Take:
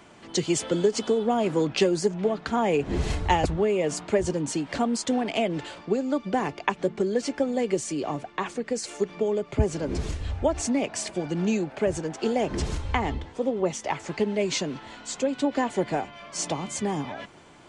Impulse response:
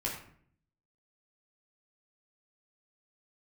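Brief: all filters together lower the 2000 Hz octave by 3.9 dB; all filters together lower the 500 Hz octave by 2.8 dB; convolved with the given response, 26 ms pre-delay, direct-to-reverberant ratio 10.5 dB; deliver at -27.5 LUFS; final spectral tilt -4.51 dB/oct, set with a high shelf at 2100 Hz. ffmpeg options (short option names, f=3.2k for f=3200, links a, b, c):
-filter_complex "[0:a]equalizer=f=500:t=o:g=-3.5,equalizer=f=2k:t=o:g=-6.5,highshelf=f=2.1k:g=3,asplit=2[a][b];[1:a]atrim=start_sample=2205,adelay=26[c];[b][c]afir=irnorm=-1:irlink=0,volume=-14.5dB[d];[a][d]amix=inputs=2:normalize=0,volume=0.5dB"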